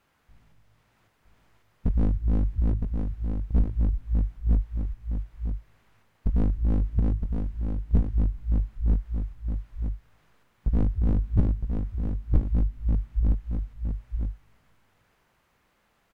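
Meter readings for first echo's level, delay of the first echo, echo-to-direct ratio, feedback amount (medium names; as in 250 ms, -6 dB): -5.5 dB, 963 ms, -5.5 dB, no regular repeats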